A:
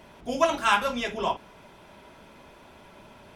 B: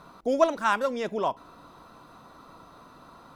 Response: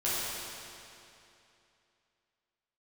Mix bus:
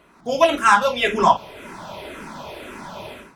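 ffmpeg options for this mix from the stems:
-filter_complex "[0:a]lowshelf=f=100:g=-7.5,dynaudnorm=f=110:g=5:m=12dB,asplit=2[a][b];[b]afreqshift=-1.9[c];[a][c]amix=inputs=2:normalize=1,volume=-2dB[d];[1:a]volume=-8dB[e];[d][e]amix=inputs=2:normalize=0,dynaudnorm=f=100:g=5:m=8.5dB"

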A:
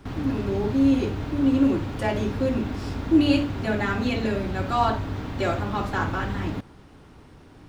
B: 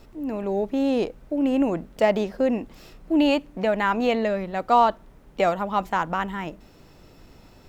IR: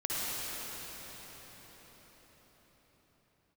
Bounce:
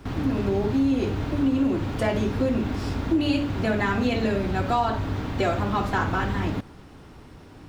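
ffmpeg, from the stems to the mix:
-filter_complex "[0:a]volume=2.5dB[a];[1:a]volume=-8dB[b];[a][b]amix=inputs=2:normalize=0,acompressor=threshold=-19dB:ratio=5"

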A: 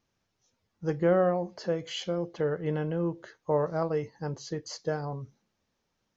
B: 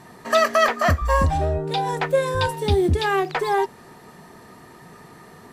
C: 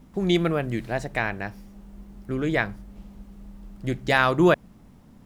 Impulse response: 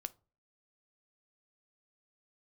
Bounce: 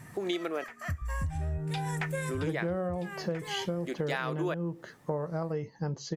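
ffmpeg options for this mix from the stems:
-filter_complex "[0:a]equalizer=f=170:w=1.5:g=6,adelay=1600,volume=1.5dB[a];[1:a]equalizer=f=125:t=o:w=1:g=9,equalizer=f=250:t=o:w=1:g=-7,equalizer=f=500:t=o:w=1:g=-11,equalizer=f=1k:t=o:w=1:g=-8,equalizer=f=2k:t=o:w=1:g=4,equalizer=f=4k:t=o:w=1:g=-11,equalizer=f=8k:t=o:w=1:g=4,volume=-2dB[b];[2:a]highpass=f=290:w=0.5412,highpass=f=290:w=1.3066,volume=-2dB,asplit=3[c][d][e];[c]atrim=end=0.64,asetpts=PTS-STARTPTS,afade=t=out:st=0.636:d=0.004:c=hsin[f];[d]atrim=start=0.64:end=1.95,asetpts=PTS-STARTPTS,volume=0[g];[e]atrim=start=1.95,asetpts=PTS-STARTPTS,afade=t=in:d=0.004:c=hsin[h];[f][g][h]concat=n=3:v=0:a=1,asplit=2[i][j];[j]apad=whole_len=243692[k];[b][k]sidechaincompress=threshold=-40dB:ratio=4:attack=9.2:release=896[l];[a][l][i]amix=inputs=3:normalize=0,acompressor=threshold=-29dB:ratio=6"

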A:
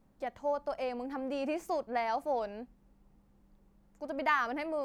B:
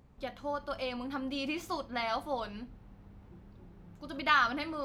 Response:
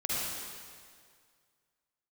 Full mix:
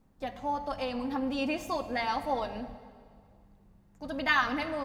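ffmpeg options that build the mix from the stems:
-filter_complex "[0:a]bandreject=f=570:w=15,volume=-0.5dB,asplit=3[a][b][c];[b]volume=-15.5dB[d];[1:a]aecho=1:1:1.1:0.6,volume=-2dB,asplit=2[e][f];[f]volume=-20.5dB[g];[c]apad=whole_len=213823[h];[e][h]sidechaingate=range=-33dB:threshold=-55dB:ratio=16:detection=peak[i];[2:a]atrim=start_sample=2205[j];[d][g]amix=inputs=2:normalize=0[k];[k][j]afir=irnorm=-1:irlink=0[l];[a][i][l]amix=inputs=3:normalize=0"

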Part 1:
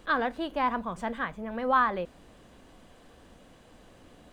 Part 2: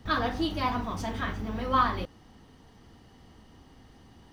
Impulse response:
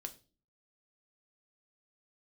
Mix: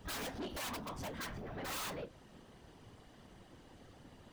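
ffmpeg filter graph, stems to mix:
-filter_complex "[0:a]aeval=exprs='(mod(15*val(0)+1,2)-1)/15':c=same,flanger=delay=8:depth=2.5:regen=-63:speed=1.3:shape=triangular,volume=2dB,asplit=3[a][b][c];[b]volume=-13dB[d];[1:a]volume=-1,volume=-0.5dB,asplit=2[e][f];[f]volume=-19dB[g];[c]apad=whole_len=190637[h];[e][h]sidechaincompress=threshold=-46dB:ratio=6:attack=50:release=109[i];[2:a]atrim=start_sample=2205[j];[d][g]amix=inputs=2:normalize=0[k];[k][j]afir=irnorm=-1:irlink=0[l];[a][i][l]amix=inputs=3:normalize=0,afftfilt=real='hypot(re,im)*cos(2*PI*random(0))':imag='hypot(re,im)*sin(2*PI*random(1))':win_size=512:overlap=0.75,asoftclip=type=tanh:threshold=-38dB"

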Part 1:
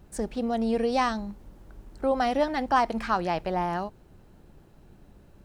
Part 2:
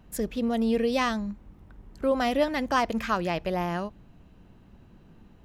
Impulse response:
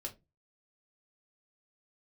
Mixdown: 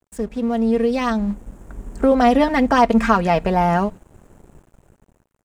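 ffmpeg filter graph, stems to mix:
-filter_complex "[0:a]highshelf=f=5.8k:t=q:w=3:g=9.5,bandreject=f=60:t=h:w=6,bandreject=f=120:t=h:w=6,bandreject=f=180:t=h:w=6,bandreject=f=240:t=h:w=6,bandreject=f=300:t=h:w=6,acompressor=threshold=-32dB:ratio=6,volume=2.5dB,asplit=3[a][b][c];[b]volume=-23dB[d];[1:a]aecho=1:1:4.3:0.9,volume=-2.5dB,asplit=2[e][f];[f]volume=-15.5dB[g];[c]apad=whole_len=240147[h];[e][h]sidechaingate=range=-33dB:threshold=-44dB:ratio=16:detection=peak[i];[2:a]atrim=start_sample=2205[j];[d][g]amix=inputs=2:normalize=0[k];[k][j]afir=irnorm=-1:irlink=0[l];[a][i][l]amix=inputs=3:normalize=0,lowpass=f=2.7k:p=1,dynaudnorm=f=500:g=5:m=13dB,aeval=exprs='sgn(val(0))*max(abs(val(0))-0.00596,0)':c=same"

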